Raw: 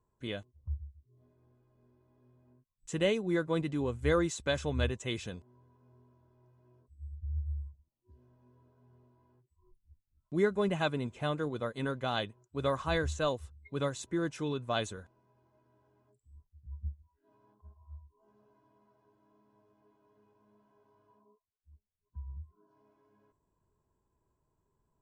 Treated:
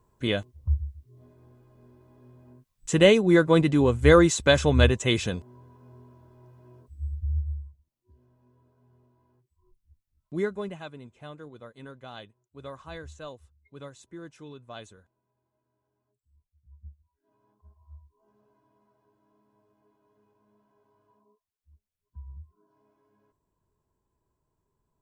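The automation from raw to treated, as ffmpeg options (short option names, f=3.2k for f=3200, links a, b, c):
-af "volume=22dB,afade=t=out:st=7.05:d=0.57:silence=0.266073,afade=t=out:st=10.39:d=0.42:silence=0.298538,afade=t=in:st=16.69:d=1.27:silence=0.316228"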